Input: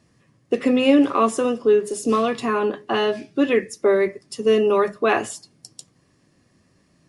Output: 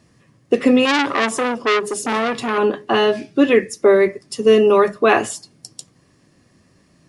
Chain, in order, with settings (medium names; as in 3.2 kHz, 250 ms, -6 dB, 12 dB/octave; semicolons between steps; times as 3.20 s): 0.85–2.58 s: transformer saturation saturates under 2.7 kHz; trim +5 dB